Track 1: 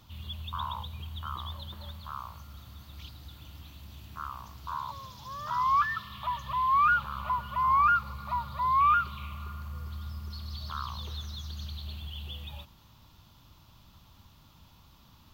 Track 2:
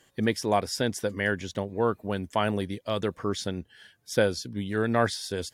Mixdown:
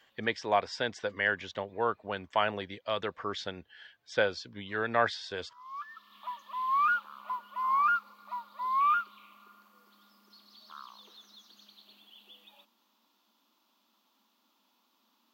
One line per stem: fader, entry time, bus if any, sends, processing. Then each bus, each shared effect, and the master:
-2.5 dB, 0.00 s, no send, steep high-pass 210 Hz 96 dB/octave; upward expansion 1.5:1, over -37 dBFS; auto duck -21 dB, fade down 0.25 s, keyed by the second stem
+1.5 dB, 0.00 s, no send, elliptic low-pass 8.1 kHz; three-band isolator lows -14 dB, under 550 Hz, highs -23 dB, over 4.3 kHz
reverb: none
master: none

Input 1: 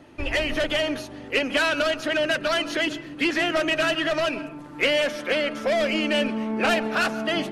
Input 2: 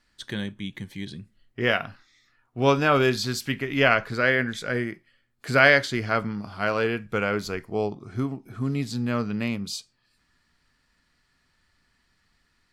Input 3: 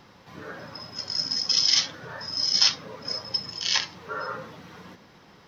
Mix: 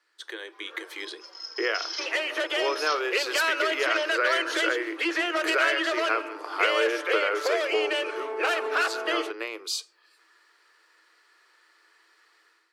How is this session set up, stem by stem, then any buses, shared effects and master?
-4.5 dB, 1.80 s, bus A, no send, treble shelf 4.8 kHz +8.5 dB
+1.5 dB, 0.00 s, no bus, no send, compression 12:1, threshold -31 dBFS, peak gain reduction 19.5 dB
-11.5 dB, 0.25 s, bus A, no send, endless flanger 4 ms -1.6 Hz
bus A: 0.0 dB, treble shelf 7.1 kHz -7.5 dB; compression 2:1, threshold -34 dBFS, peak gain reduction 7.5 dB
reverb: none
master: level rider gain up to 10 dB; rippled Chebyshev high-pass 320 Hz, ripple 6 dB

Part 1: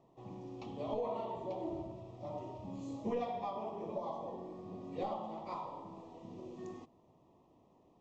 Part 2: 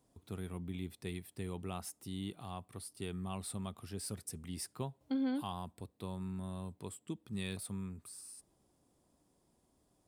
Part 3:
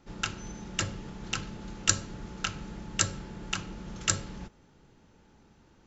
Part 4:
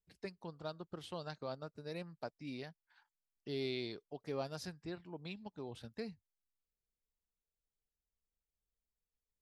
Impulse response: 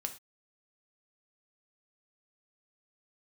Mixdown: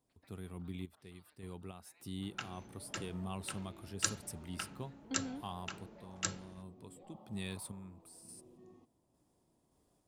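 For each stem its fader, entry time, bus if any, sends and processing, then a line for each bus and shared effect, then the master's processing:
-17.0 dB, 2.00 s, no send, bass shelf 440 Hz +7.5 dB; peak limiter -33.5 dBFS, peak gain reduction 10.5 dB
-0.5 dB, 0.00 s, no send, random-step tremolo, depth 75%
-11.0 dB, 2.15 s, no send, high-pass 200 Hz 6 dB/octave; treble shelf 5.2 kHz -6 dB; three bands expanded up and down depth 70%
-11.5 dB, 0.00 s, send -4.5 dB, low-pass 2.7 kHz; spectral gate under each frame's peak -15 dB weak; compression, threshold -59 dBFS, peak gain reduction 13.5 dB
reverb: on, pre-delay 3 ms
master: none

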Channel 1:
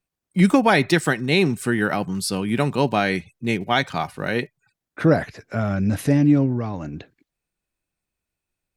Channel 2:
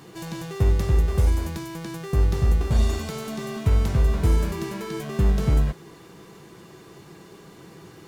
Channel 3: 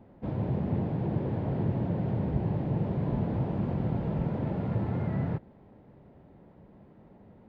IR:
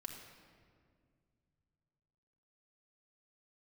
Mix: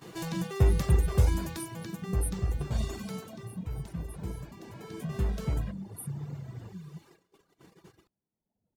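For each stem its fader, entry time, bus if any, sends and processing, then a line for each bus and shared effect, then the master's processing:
-2.0 dB, 0.00 s, no send, high-pass 150 Hz 12 dB/octave; FFT band-reject 200–8500 Hz; compression, threshold -32 dBFS, peak gain reduction 16.5 dB
1.51 s 0 dB -> 2.22 s -6.5 dB -> 3.21 s -6.5 dB -> 3.59 s -15.5 dB -> 4.59 s -15.5 dB -> 5.19 s -6.5 dB, 0.00 s, no send, hum notches 50/100/150/200/250/300/350/400 Hz
-10.5 dB, 1.35 s, no send, steep low-pass 2.9 kHz; band-stop 570 Hz, Q 12; peak limiter -26 dBFS, peak gain reduction 10.5 dB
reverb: none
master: gate -51 dBFS, range -14 dB; reverb removal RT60 1.3 s

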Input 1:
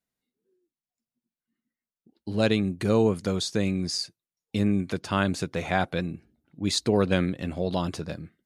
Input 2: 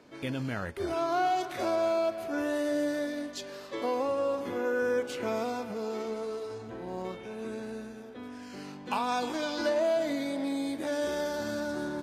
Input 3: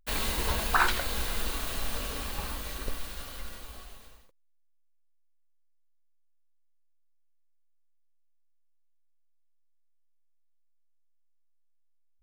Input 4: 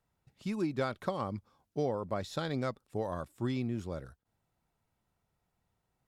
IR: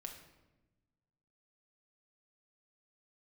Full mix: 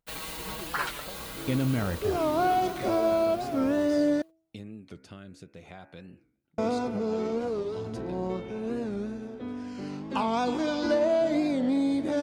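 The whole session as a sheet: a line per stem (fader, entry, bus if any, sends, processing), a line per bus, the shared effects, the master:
-10.5 dB, 0.00 s, no send, de-hum 70.06 Hz, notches 38; compression 6:1, threshold -28 dBFS, peak gain reduction 11.5 dB; rotary cabinet horn 0.6 Hz
-0.5 dB, 1.25 s, muted 4.22–6.58 s, no send, low-pass 7.8 kHz; bass shelf 480 Hz +10 dB
-8.0 dB, 0.00 s, no send, high-pass 64 Hz 12 dB/octave; comb 6.3 ms, depth 83%
-11.5 dB, 0.00 s, no send, none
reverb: none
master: band-stop 1.7 kHz, Q 20; de-hum 324.4 Hz, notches 2; warped record 45 rpm, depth 160 cents

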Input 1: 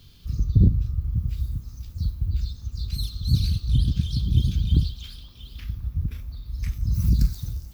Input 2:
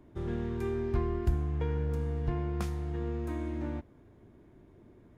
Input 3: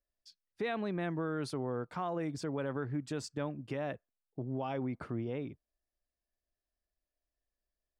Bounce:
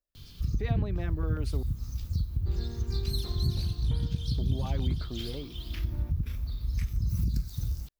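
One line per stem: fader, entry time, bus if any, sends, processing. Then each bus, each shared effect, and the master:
+2.5 dB, 0.15 s, no send, compression 6:1, threshold -28 dBFS, peak gain reduction 16 dB
-9.5 dB, 2.30 s, no send, one-sided wavefolder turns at -26.5 dBFS; gain riding; auto duck -11 dB, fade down 0.35 s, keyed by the third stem
-1.5 dB, 0.00 s, muted 1.63–4.03 s, no send, LFO notch saw down 7.3 Hz 450–2700 Hz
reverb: none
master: none

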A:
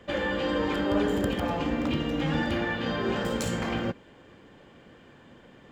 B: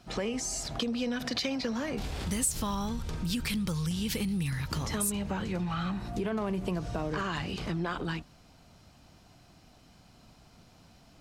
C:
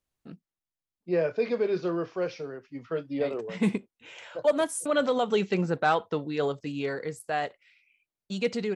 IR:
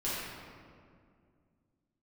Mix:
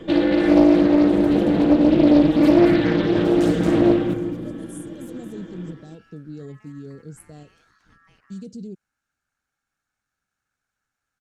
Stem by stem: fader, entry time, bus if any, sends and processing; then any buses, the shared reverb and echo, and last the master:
+3.0 dB, 0.00 s, no bus, send -10.5 dB, echo send -9 dB, comb 6.3 ms, depth 53%; peak limiter -21.5 dBFS, peak gain reduction 9 dB; small resonant body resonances 310/3400 Hz, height 15 dB, ringing for 25 ms; auto duck -12 dB, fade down 0.25 s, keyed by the third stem
-17.0 dB, 0.00 s, bus A, no send, echo send -7 dB, ring modulator 1.5 kHz
-0.5 dB, 0.00 s, bus A, no send, no echo send, random-step tremolo
bus A: 0.0 dB, Chebyshev band-stop 250–7600 Hz, order 2; peak limiter -30.5 dBFS, peak gain reduction 7.5 dB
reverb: on, RT60 2.2 s, pre-delay 5 ms
echo: delay 227 ms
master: bass shelf 160 Hz +7 dB; loudspeaker Doppler distortion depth 0.52 ms

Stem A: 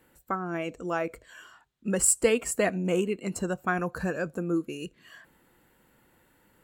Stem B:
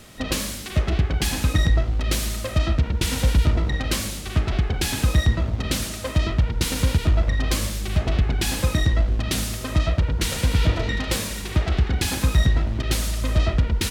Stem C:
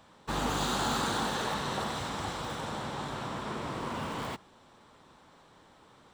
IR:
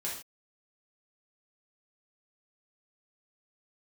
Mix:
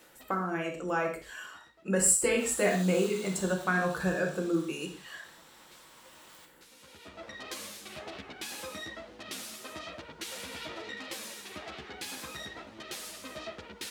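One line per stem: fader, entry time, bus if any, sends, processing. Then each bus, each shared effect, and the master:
+2.0 dB, 0.00 s, bus A, send -6 dB, none
-7.5 dB, 0.00 s, bus A, no send, three-phase chorus; auto duck -21 dB, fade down 0.45 s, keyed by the first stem
-9.5 dB, 2.10 s, no bus, send -4 dB, differentiator
bus A: 0.0 dB, high-pass 380 Hz 12 dB/octave; compression, threshold -36 dBFS, peak gain reduction 18.5 dB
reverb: on, pre-delay 3 ms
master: none

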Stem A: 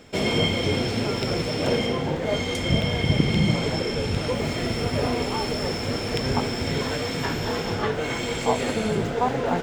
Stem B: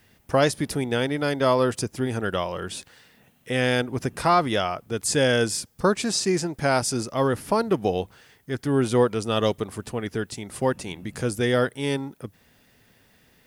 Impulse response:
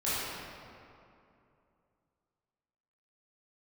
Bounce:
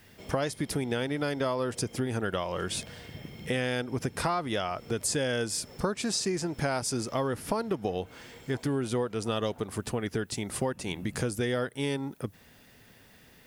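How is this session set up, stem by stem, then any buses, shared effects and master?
-11.0 dB, 0.05 s, no send, auto duck -12 dB, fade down 0.20 s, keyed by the second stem
+2.5 dB, 0.00 s, no send, none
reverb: none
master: compression 6:1, threshold -27 dBFS, peak gain reduction 14 dB

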